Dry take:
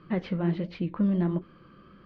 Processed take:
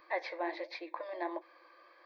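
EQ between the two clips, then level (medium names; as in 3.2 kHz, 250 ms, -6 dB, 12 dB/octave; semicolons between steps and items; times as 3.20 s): brick-wall FIR high-pass 320 Hz; static phaser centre 2 kHz, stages 8; +5.0 dB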